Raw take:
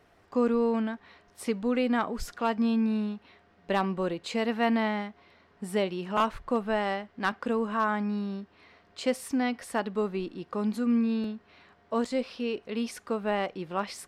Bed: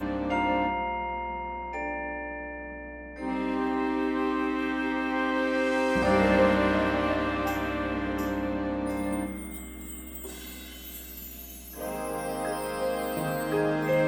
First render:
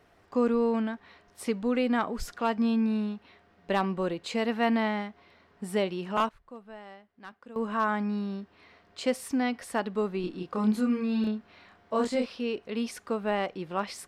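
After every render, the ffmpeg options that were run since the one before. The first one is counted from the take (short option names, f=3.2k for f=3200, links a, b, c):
-filter_complex "[0:a]asettb=1/sr,asplit=3[a][b][c];[a]atrim=end=10.214[d];[b]atrim=start=10.21:end=12.26,asetpts=PTS-STARTPTS,afade=t=in:d=0.004:c=qsin,afade=t=out:st=2.046:d=0.004:c=qsin,asplit=2[e][f];[f]adelay=28,volume=-2dB[g];[e][g]amix=inputs=2:normalize=0,atrim=end_sample=90405[h];[c]atrim=start=12.256[i];[d][h]acrossfade=d=0.004:c1=hsin:c2=qsin[j];[j][i]acrossfade=d=0.004:c1=qsin:c2=hsin,asplit=3[k][l][m];[k]atrim=end=6.29,asetpts=PTS-STARTPTS,afade=t=out:st=5.95:d=0.34:c=log:silence=0.133352[n];[l]atrim=start=6.29:end=7.56,asetpts=PTS-STARTPTS,volume=-17.5dB[o];[m]atrim=start=7.56,asetpts=PTS-STARTPTS,afade=t=in:d=0.34:c=log:silence=0.133352[p];[n][o][p]concat=n=3:v=0:a=1"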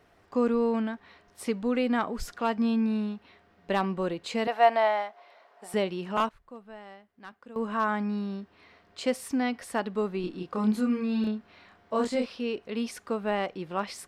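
-filter_complex "[0:a]asettb=1/sr,asplit=3[a][b][c];[a]atrim=end=4.474[d];[b]atrim=start=4.47:end=5.74,asetpts=PTS-STARTPTS,afade=t=in:d=0.004:c=qsin,afade=t=out:st=1.266:d=0.004:c=qsin,highpass=f=660:t=q:w=3.2[e];[c]atrim=start=5.736[f];[d][e]acrossfade=d=0.004:c1=hsin:c2=qsin[g];[g][f]acrossfade=d=0.004:c1=qsin:c2=hsin"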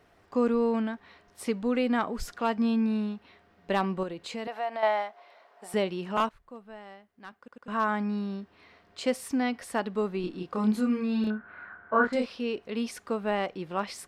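-filter_complex "[0:a]asettb=1/sr,asplit=3[a][b][c];[a]atrim=end=4.034[d];[b]atrim=start=4.03:end=4.83,asetpts=PTS-STARTPTS,afade=t=in:d=0.004:c=qsin,afade=t=out:st=0.796:d=0.004:c=qsin,acompressor=threshold=-37dB:ratio=2:attack=3.2:release=140:knee=1:detection=peak[e];[c]atrim=start=4.826[f];[d][e]acrossfade=d=0.004:c1=hsin:c2=qsin[g];[g][f]acrossfade=d=0.004:c1=qsin:c2=hsin,asettb=1/sr,asplit=3[h][i][j];[h]atrim=end=11.304[k];[i]atrim=start=11.3:end=12.13,asetpts=PTS-STARTPTS,afade=t=in:d=0.004:c=qsin,afade=t=out:st=0.826:d=0.004:c=qsin,lowpass=f=1.5k:t=q:w=13[l];[j]atrim=start=12.126[m];[k][l]acrossfade=d=0.004:c1=hsin:c2=qsin[n];[n][m]acrossfade=d=0.004:c1=qsin:c2=hsin,asplit=4[o][p][q][r];[o]atrim=end=7.482[s];[p]atrim=start=7.378:end=7.482[t];[q]atrim=start=7.378:end=7.482[u];[r]atrim=start=7.678[v];[s][t]acrossfade=d=0.004:c1=hsin:c2=hsin[w];[w][u]acrossfade=d=0.004:c1=hsin:c2=hsin[x];[x][v]acrossfade=d=0.004:c1=hsin:c2=hsin"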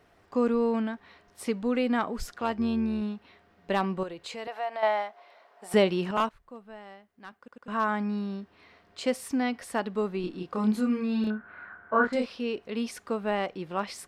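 -filter_complex "[0:a]asettb=1/sr,asplit=3[a][b][c];[a]atrim=end=2.274[d];[b]atrim=start=2.27:end=3.02,asetpts=PTS-STARTPTS,afade=t=in:d=0.004:c=qsin,afade=t=out:st=0.746:d=0.004:c=qsin,tremolo=f=140:d=0.4[e];[c]atrim=start=3.016[f];[d][e]acrossfade=d=0.004:c1=hsin:c2=qsin[g];[g][f]acrossfade=d=0.004:c1=qsin:c2=hsin,asettb=1/sr,asplit=3[h][i][j];[h]atrim=end=4.034[k];[i]atrim=start=4.03:end=4.82,asetpts=PTS-STARTPTS,afade=t=in:d=0.004:c=qsin,afade=t=out:st=0.786:d=0.004:c=qsin,equalizer=f=220:t=o:w=0.89:g=-8.5[l];[j]atrim=start=4.816[m];[k][l]acrossfade=d=0.004:c1=hsin:c2=qsin[n];[n][m]acrossfade=d=0.004:c1=qsin:c2=hsin,asettb=1/sr,asplit=3[o][p][q];[o]atrim=end=5.714[r];[p]atrim=start=5.71:end=6.11,asetpts=PTS-STARTPTS,afade=t=in:d=0.004:c=qsin,afade=t=out:st=0.396:d=0.004:c=qsin,acontrast=52[s];[q]atrim=start=6.106[t];[r][s]acrossfade=d=0.004:c1=hsin:c2=qsin[u];[u][t]acrossfade=d=0.004:c1=qsin:c2=hsin"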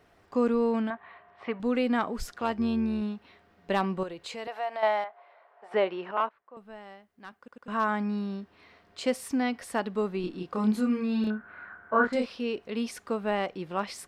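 -filter_complex "[0:a]asettb=1/sr,asplit=3[a][b][c];[a]atrim=end=0.904[d];[b]atrim=start=0.9:end=1.6,asetpts=PTS-STARTPTS,afade=t=in:d=0.004:c=qsin,afade=t=out:st=0.696:d=0.004:c=qsin,highpass=110,equalizer=f=200:t=q:w=4:g=-6,equalizer=f=290:t=q:w=4:g=-9,equalizer=f=490:t=q:w=4:g=-4,equalizer=f=700:t=q:w=4:g=9,equalizer=f=1.1k:t=q:w=4:g=9,equalizer=f=1.8k:t=q:w=4:g=5,lowpass=f=3k:w=0.5412,lowpass=f=3k:w=1.3066[e];[c]atrim=start=1.596[f];[d][e]acrossfade=d=0.004:c1=hsin:c2=qsin[g];[g][f]acrossfade=d=0.004:c1=qsin:c2=hsin,asettb=1/sr,asplit=3[h][i][j];[h]atrim=end=5.044[k];[i]atrim=start=5.04:end=6.57,asetpts=PTS-STARTPTS,afade=t=in:d=0.004:c=qsin,afade=t=out:st=1.526:d=0.004:c=qsin,highpass=480,lowpass=2k[l];[j]atrim=start=6.566[m];[k][l]acrossfade=d=0.004:c1=hsin:c2=qsin[n];[n][m]acrossfade=d=0.004:c1=qsin:c2=hsin"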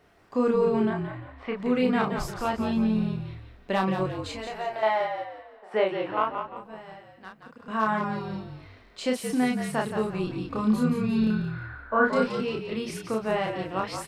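-filter_complex "[0:a]asplit=2[a][b];[b]adelay=32,volume=-3dB[c];[a][c]amix=inputs=2:normalize=0,asplit=2[d][e];[e]asplit=4[f][g][h][i];[f]adelay=174,afreqshift=-50,volume=-7dB[j];[g]adelay=348,afreqshift=-100,volume=-15.6dB[k];[h]adelay=522,afreqshift=-150,volume=-24.3dB[l];[i]adelay=696,afreqshift=-200,volume=-32.9dB[m];[j][k][l][m]amix=inputs=4:normalize=0[n];[d][n]amix=inputs=2:normalize=0"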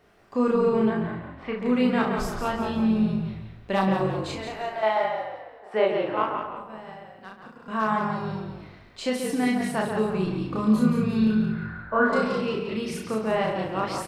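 -filter_complex "[0:a]asplit=2[a][b];[b]adelay=37,volume=-6dB[c];[a][c]amix=inputs=2:normalize=0,asplit=2[d][e];[e]adelay=134,lowpass=f=1.9k:p=1,volume=-6dB,asplit=2[f][g];[g]adelay=134,lowpass=f=1.9k:p=1,volume=0.35,asplit=2[h][i];[i]adelay=134,lowpass=f=1.9k:p=1,volume=0.35,asplit=2[j][k];[k]adelay=134,lowpass=f=1.9k:p=1,volume=0.35[l];[f][h][j][l]amix=inputs=4:normalize=0[m];[d][m]amix=inputs=2:normalize=0"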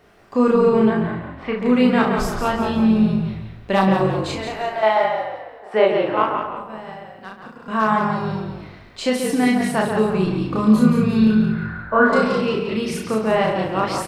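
-af "volume=6.5dB"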